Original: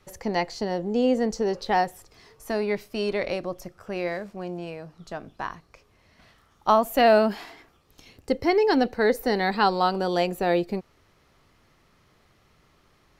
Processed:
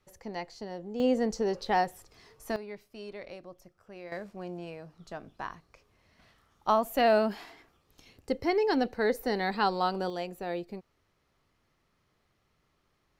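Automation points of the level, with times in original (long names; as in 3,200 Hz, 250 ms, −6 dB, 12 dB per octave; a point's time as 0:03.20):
−12 dB
from 0:01.00 −4 dB
from 0:02.56 −16 dB
from 0:04.12 −6 dB
from 0:10.10 −12 dB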